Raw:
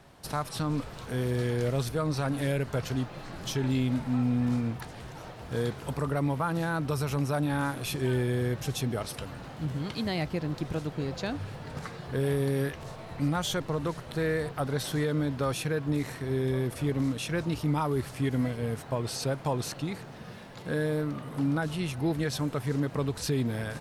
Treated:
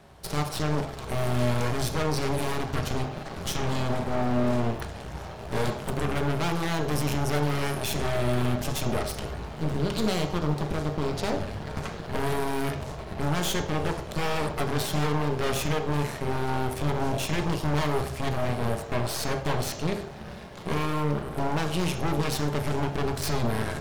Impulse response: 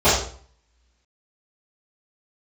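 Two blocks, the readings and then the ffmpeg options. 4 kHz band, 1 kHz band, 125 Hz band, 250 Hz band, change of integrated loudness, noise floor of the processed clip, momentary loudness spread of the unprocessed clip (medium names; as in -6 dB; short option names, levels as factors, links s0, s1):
+4.5 dB, +6.0 dB, +1.5 dB, 0.0 dB, +2.0 dB, -39 dBFS, 8 LU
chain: -filter_complex "[0:a]aeval=exprs='0.119*(cos(1*acos(clip(val(0)/0.119,-1,1)))-cos(1*PI/2))+0.0376*(cos(4*acos(clip(val(0)/0.119,-1,1)))-cos(4*PI/2))+0.015*(cos(8*acos(clip(val(0)/0.119,-1,1)))-cos(8*PI/2))':c=same,aeval=exprs='0.119*(abs(mod(val(0)/0.119+3,4)-2)-1)':c=same,asplit=2[s0][s1];[1:a]atrim=start_sample=2205[s2];[s1][s2]afir=irnorm=-1:irlink=0,volume=0.0473[s3];[s0][s3]amix=inputs=2:normalize=0"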